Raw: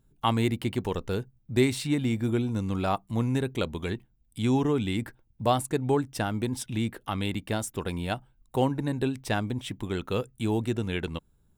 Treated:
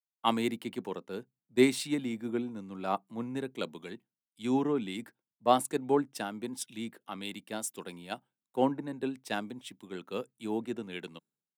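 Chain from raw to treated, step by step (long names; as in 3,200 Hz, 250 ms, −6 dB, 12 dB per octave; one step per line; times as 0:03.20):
downward expander −57 dBFS
high-pass filter 180 Hz 24 dB per octave
multiband upward and downward expander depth 100%
level −5.5 dB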